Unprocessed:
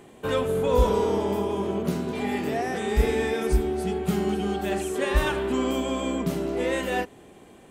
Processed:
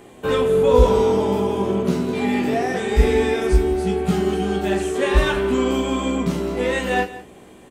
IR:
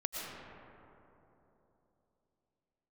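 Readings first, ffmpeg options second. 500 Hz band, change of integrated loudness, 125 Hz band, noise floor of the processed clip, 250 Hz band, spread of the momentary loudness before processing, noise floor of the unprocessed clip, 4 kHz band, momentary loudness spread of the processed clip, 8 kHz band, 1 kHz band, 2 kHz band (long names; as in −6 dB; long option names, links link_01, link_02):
+6.5 dB, +6.0 dB, +6.0 dB, −45 dBFS, +6.0 dB, 5 LU, −50 dBFS, +5.0 dB, 7 LU, +3.5 dB, +5.0 dB, +5.5 dB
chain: -filter_complex "[0:a]asplit=2[link_01][link_02];[link_02]aecho=0:1:170:0.15[link_03];[link_01][link_03]amix=inputs=2:normalize=0,acrossover=split=8800[link_04][link_05];[link_05]acompressor=threshold=-56dB:ratio=4:attack=1:release=60[link_06];[link_04][link_06]amix=inputs=2:normalize=0,asplit=2[link_07][link_08];[link_08]aecho=0:1:16|41:0.562|0.376[link_09];[link_07][link_09]amix=inputs=2:normalize=0,volume=3.5dB"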